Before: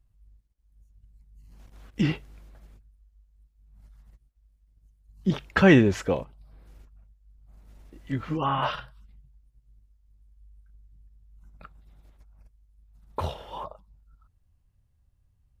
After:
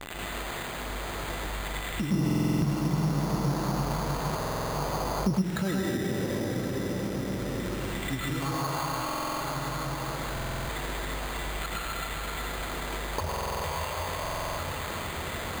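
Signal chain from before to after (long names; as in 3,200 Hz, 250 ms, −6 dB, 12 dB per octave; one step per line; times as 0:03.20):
spike at every zero crossing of −12 dBFS
Butterworth low-pass 6,700 Hz
high-shelf EQ 3,400 Hz −10 dB
hollow resonant body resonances 2,000/2,800 Hz, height 9 dB, ringing for 85 ms
convolution reverb RT60 3.6 s, pre-delay 98 ms, DRR −9 dB
downward compressor 8 to 1, threshold −37 dBFS, peak gain reduction 30.5 dB
0:02.11–0:05.42: octave-band graphic EQ 125/500/1,000/2,000 Hz +9/+5/+8/−7 dB
bad sample-rate conversion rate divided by 8×, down filtered, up hold
buffer that repeats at 0:02.25/0:04.38/0:09.04/0:10.32/0:13.27/0:14.21, samples 2,048, times 7
level +8.5 dB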